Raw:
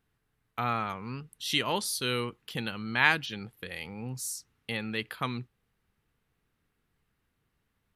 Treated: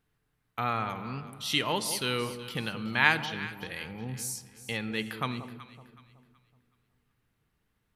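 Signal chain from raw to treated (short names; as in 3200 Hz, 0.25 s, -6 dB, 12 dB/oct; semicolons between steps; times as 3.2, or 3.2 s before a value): echo with dull and thin repeats by turns 0.187 s, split 950 Hz, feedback 57%, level -10 dB; on a send at -13 dB: reverb RT60 1.5 s, pre-delay 7 ms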